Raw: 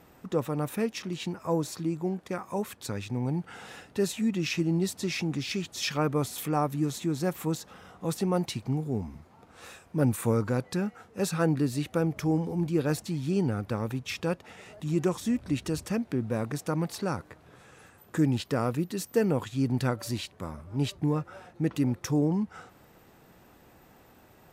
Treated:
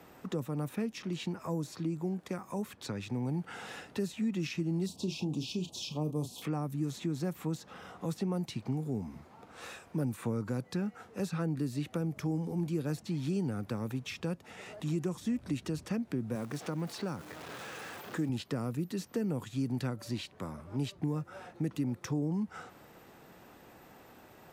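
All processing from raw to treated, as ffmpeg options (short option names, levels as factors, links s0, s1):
-filter_complex "[0:a]asettb=1/sr,asplit=3[s0][s1][s2];[s0]atrim=end=4.864[s3];[s1]atrim=start=4.86:end=6.42,asetpts=PTS-STARTPTS,afade=t=in:d=0.004:c=qsin,afade=t=out:st=1.556:d=0.004:c=qsin,asuperstop=centerf=1700:order=8:qfactor=1,asplit=2[s4][s5];[s5]adelay=33,volume=0.316[s6];[s4][s6]amix=inputs=2:normalize=0,atrim=end_sample=68796[s7];[s2]atrim=start=6.416[s8];[s3][s7]acrossfade=d=0.004:c1=hsin:c2=qsin[s9];[s9][s8]acrossfade=d=0.004:c1=qsin:c2=hsin,asettb=1/sr,asplit=3[s10][s11][s12];[s10]atrim=end=16.354[s13];[s11]atrim=start=16.35:end=18.29,asetpts=PTS-STARTPTS,afade=t=in:d=0.004:c=qsin,afade=t=out:st=1.936:d=0.004:c=qsin,aeval=exprs='val(0)+0.5*0.0106*sgn(val(0))':c=same,highpass=f=230:p=1[s14];[s12]atrim=start=18.286[s15];[s13][s14]acrossfade=d=0.004:c1=hsin:c2=qsin[s16];[s16][s15]acrossfade=d=0.004:c1=qsin:c2=hsin,lowshelf=f=110:g=-9.5,acrossover=split=98|250|6000[s17][s18][s19][s20];[s17]acompressor=threshold=0.00126:ratio=4[s21];[s18]acompressor=threshold=0.0178:ratio=4[s22];[s19]acompressor=threshold=0.00708:ratio=4[s23];[s20]acompressor=threshold=0.00158:ratio=4[s24];[s21][s22][s23][s24]amix=inputs=4:normalize=0,equalizer=f=12000:t=o:w=1.6:g=-3,volume=1.33"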